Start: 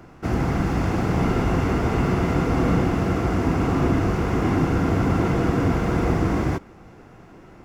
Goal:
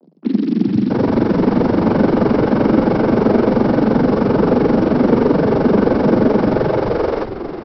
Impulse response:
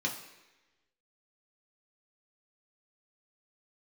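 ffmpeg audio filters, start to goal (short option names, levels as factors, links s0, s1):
-filter_complex "[0:a]tiltshelf=f=1300:g=7.5,acrossover=split=190|4300[s0][s1][s2];[s2]adelay=30[s3];[s1]adelay=670[s4];[s0][s4][s3]amix=inputs=3:normalize=0,aresample=11025,acrusher=bits=5:mix=0:aa=0.5,aresample=44100,tremolo=f=23:d=0.857,afreqshift=150,asplit=5[s5][s6][s7][s8][s9];[s6]adelay=407,afreqshift=-88,volume=0.355[s10];[s7]adelay=814,afreqshift=-176,volume=0.135[s11];[s8]adelay=1221,afreqshift=-264,volume=0.0513[s12];[s9]adelay=1628,afreqshift=-352,volume=0.0195[s13];[s5][s10][s11][s12][s13]amix=inputs=5:normalize=0,acontrast=33"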